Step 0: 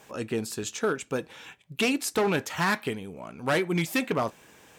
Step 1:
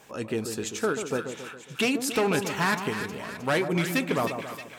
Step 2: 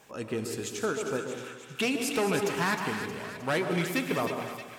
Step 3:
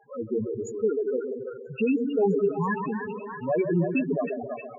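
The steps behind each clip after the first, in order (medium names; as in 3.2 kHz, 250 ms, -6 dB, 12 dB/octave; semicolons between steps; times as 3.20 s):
two-band feedback delay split 1.2 kHz, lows 137 ms, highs 312 ms, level -7.5 dB
reverberation, pre-delay 3 ms, DRR 7 dB; trim -3.5 dB
loudest bins only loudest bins 4; repeats whose band climbs or falls 328 ms, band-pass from 680 Hz, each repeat 0.7 oct, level -6.5 dB; trim +7.5 dB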